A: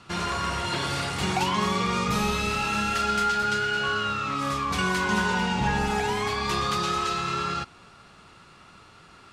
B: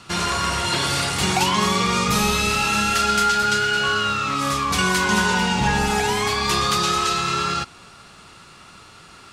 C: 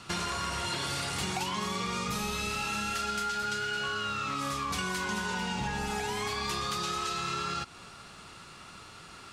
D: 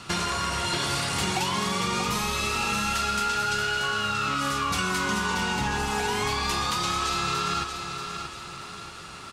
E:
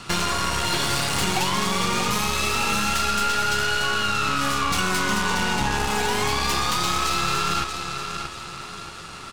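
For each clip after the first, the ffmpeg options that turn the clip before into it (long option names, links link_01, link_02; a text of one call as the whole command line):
ffmpeg -i in.wav -af "highshelf=frequency=4200:gain=9,volume=4.5dB" out.wav
ffmpeg -i in.wav -af "acompressor=threshold=-27dB:ratio=6,volume=-3.5dB" out.wav
ffmpeg -i in.wav -af "aecho=1:1:632|1264|1896|2528|3160:0.422|0.186|0.0816|0.0359|0.0158,volume=5.5dB" out.wav
ffmpeg -i in.wav -af "aeval=exprs='0.211*(cos(1*acos(clip(val(0)/0.211,-1,1)))-cos(1*PI/2))+0.0237*(cos(8*acos(clip(val(0)/0.211,-1,1)))-cos(8*PI/2))':channel_layout=same,volume=3dB" out.wav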